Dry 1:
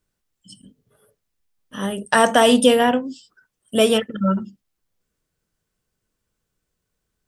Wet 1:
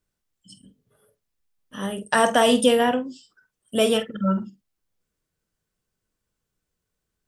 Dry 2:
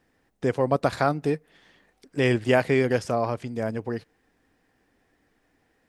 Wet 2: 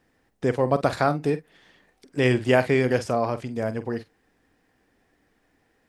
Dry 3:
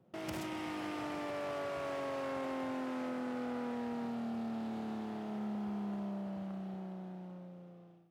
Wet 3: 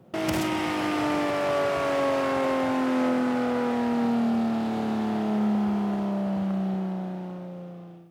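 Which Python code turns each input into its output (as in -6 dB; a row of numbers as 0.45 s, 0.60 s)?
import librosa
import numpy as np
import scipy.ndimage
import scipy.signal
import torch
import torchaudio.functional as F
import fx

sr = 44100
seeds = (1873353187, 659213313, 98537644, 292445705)

y = fx.doubler(x, sr, ms=47.0, db=-13)
y = y * 10.0 ** (-26 / 20.0) / np.sqrt(np.mean(np.square(y)))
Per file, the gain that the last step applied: -3.5 dB, +1.0 dB, +13.5 dB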